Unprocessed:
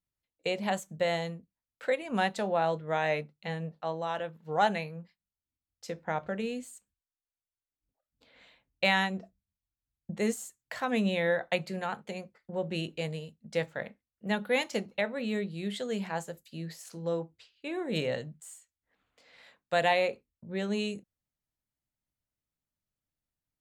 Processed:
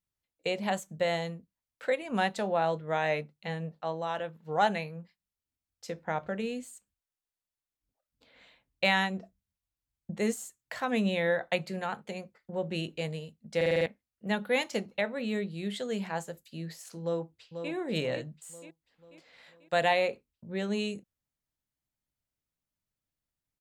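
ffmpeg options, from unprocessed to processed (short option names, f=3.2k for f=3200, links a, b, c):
-filter_complex "[0:a]asplit=2[a][b];[b]afade=t=in:st=17.02:d=0.01,afade=t=out:st=17.72:d=0.01,aecho=0:1:490|980|1470|1960|2450|2940:0.421697|0.210848|0.105424|0.0527121|0.026356|0.013178[c];[a][c]amix=inputs=2:normalize=0,asplit=7[d][e][f][g][h][i][j];[d]atrim=end=13.612[k];[e]atrim=start=13.558:end=13.612[l];[f]atrim=start=13.558:end=13.612[m];[g]atrim=start=13.558:end=13.612[n];[h]atrim=start=13.558:end=13.612[o];[i]atrim=start=13.558:end=13.612[p];[j]atrim=start=13.858[q];[k][l]acrossfade=d=0.004:c1=hsin:c2=hsin[r];[r][m]acrossfade=d=0.004:c1=hsin:c2=hsin[s];[s][n]acrossfade=d=0.004:c1=hsin:c2=hsin[t];[t][o]acrossfade=d=0.004:c1=hsin:c2=hsin[u];[u][p]acrossfade=d=0.004:c1=hsin:c2=hsin[v];[v][q]acrossfade=d=0.004:c1=hsin:c2=hsin"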